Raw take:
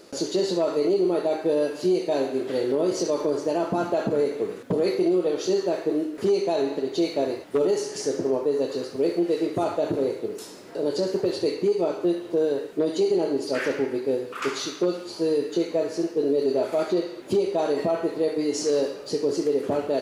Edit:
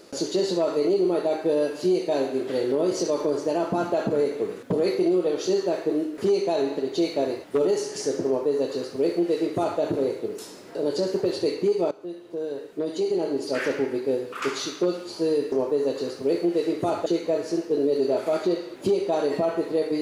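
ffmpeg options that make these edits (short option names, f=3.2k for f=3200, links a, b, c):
-filter_complex "[0:a]asplit=4[a][b][c][d];[a]atrim=end=11.91,asetpts=PTS-STARTPTS,afade=t=out:st=11.906:d=0.004:c=hsin:silence=0.158489[e];[b]atrim=start=11.91:end=15.522,asetpts=PTS-STARTPTS,afade=t=in:d=1.74:silence=0.158489[f];[c]atrim=start=8.258:end=9.802[g];[d]atrim=start=15.518[h];[e][f]concat=n=2:v=0:a=1[i];[i][g]acrossfade=d=0.004:c1=hsin:c2=hsin[j];[j][h]acrossfade=d=0.004:c1=hsin:c2=hsin"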